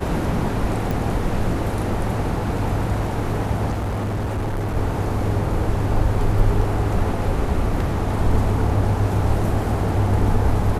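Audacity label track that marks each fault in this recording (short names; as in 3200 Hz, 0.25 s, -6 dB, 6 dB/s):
0.910000	0.910000	pop
3.710000	4.770000	clipped -20.5 dBFS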